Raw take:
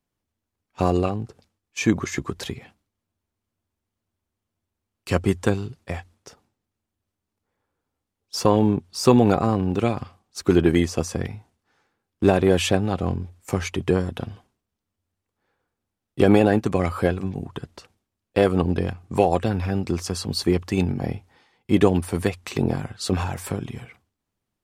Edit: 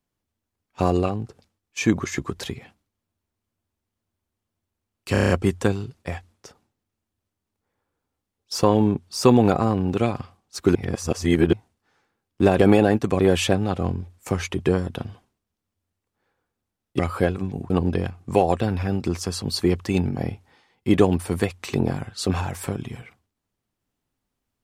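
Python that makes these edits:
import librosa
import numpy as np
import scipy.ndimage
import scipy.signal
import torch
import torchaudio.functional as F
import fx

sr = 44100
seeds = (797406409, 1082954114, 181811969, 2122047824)

y = fx.edit(x, sr, fx.stutter(start_s=5.12, slice_s=0.03, count=7),
    fx.reverse_span(start_s=10.57, length_s=0.78),
    fx.move(start_s=16.21, length_s=0.6, to_s=12.41),
    fx.cut(start_s=17.52, length_s=1.01), tone=tone)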